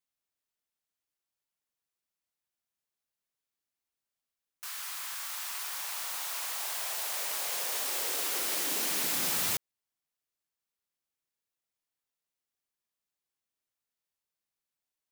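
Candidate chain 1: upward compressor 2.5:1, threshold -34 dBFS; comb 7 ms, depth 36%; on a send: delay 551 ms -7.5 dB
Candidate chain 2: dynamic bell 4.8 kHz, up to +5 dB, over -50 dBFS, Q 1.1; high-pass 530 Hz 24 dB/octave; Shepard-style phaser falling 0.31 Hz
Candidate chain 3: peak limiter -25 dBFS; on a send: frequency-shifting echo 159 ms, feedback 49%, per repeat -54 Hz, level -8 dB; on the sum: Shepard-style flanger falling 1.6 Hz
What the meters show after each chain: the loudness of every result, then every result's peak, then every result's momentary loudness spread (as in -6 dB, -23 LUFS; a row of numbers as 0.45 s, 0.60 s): -30.0 LUFS, -30.0 LUFS, -37.0 LUFS; -16.5 dBFS, -16.5 dBFS, -26.0 dBFS; 9 LU, 9 LU, 6 LU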